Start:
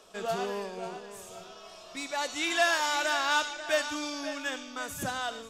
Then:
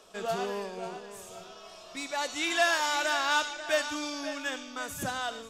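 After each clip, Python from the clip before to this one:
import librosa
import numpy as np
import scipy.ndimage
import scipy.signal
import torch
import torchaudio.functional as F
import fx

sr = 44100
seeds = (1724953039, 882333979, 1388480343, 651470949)

y = x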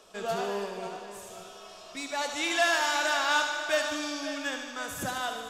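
y = fx.echo_thinned(x, sr, ms=75, feedback_pct=75, hz=180.0, wet_db=-9.0)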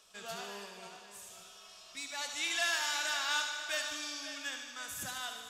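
y = fx.tone_stack(x, sr, knobs='5-5-5')
y = y * librosa.db_to_amplitude(4.0)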